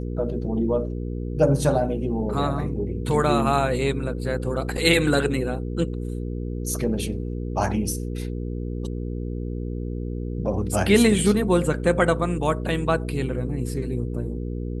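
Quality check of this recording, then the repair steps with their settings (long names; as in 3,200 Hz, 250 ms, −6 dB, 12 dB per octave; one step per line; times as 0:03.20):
mains hum 60 Hz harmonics 8 −29 dBFS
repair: hum removal 60 Hz, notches 8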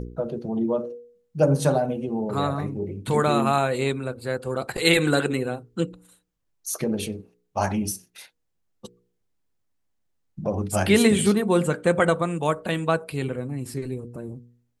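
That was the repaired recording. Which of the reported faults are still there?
none of them is left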